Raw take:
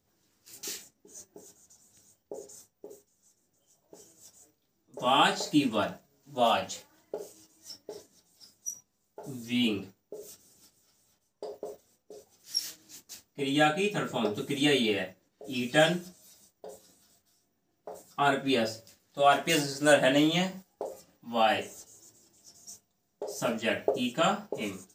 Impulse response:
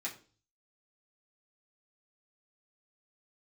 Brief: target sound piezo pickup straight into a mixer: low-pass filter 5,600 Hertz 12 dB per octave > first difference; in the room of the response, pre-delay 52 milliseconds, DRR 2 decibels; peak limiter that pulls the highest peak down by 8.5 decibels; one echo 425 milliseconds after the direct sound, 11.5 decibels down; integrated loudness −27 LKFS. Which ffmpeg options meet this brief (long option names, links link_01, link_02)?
-filter_complex "[0:a]alimiter=limit=-17.5dB:level=0:latency=1,aecho=1:1:425:0.266,asplit=2[link_01][link_02];[1:a]atrim=start_sample=2205,adelay=52[link_03];[link_02][link_03]afir=irnorm=-1:irlink=0,volume=-3.5dB[link_04];[link_01][link_04]amix=inputs=2:normalize=0,lowpass=5600,aderivative,volume=15.5dB"